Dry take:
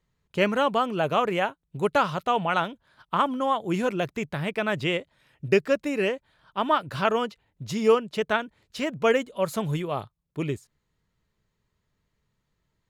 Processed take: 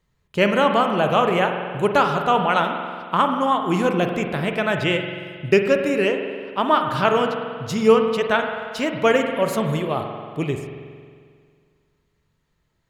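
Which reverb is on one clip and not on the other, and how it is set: spring tank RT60 2 s, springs 45 ms, chirp 65 ms, DRR 4.5 dB; gain +4.5 dB

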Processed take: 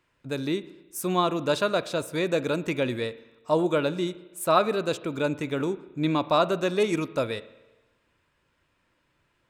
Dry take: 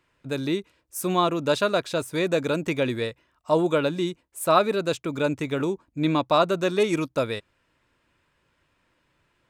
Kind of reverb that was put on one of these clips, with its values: spring tank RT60 1.1 s, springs 33/57 ms, chirp 25 ms, DRR 15.5 dB; gain -2 dB

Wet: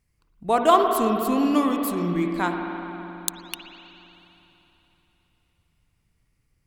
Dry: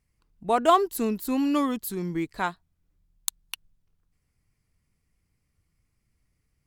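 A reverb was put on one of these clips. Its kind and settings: spring tank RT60 3.5 s, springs 51/57 ms, chirp 65 ms, DRR 3 dB; gain +2 dB

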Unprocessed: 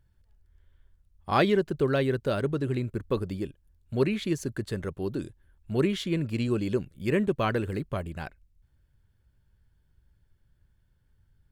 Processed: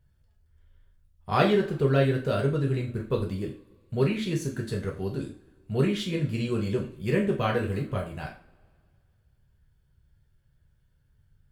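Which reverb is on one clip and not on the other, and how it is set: two-slope reverb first 0.36 s, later 2.1 s, from -26 dB, DRR -1.5 dB; gain -3 dB

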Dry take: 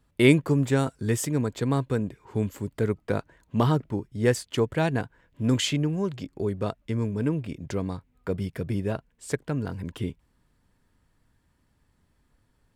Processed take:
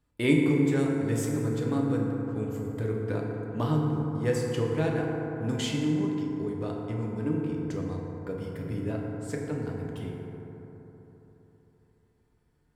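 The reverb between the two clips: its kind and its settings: FDN reverb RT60 3.8 s, high-frequency decay 0.3×, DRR -2 dB; gain -8.5 dB

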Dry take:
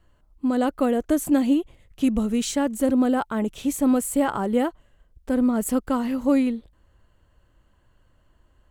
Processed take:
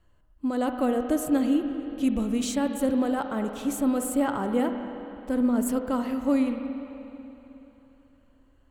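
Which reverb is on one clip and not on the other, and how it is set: spring tank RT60 3.3 s, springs 45/53/57 ms, chirp 35 ms, DRR 6 dB; gain -4 dB

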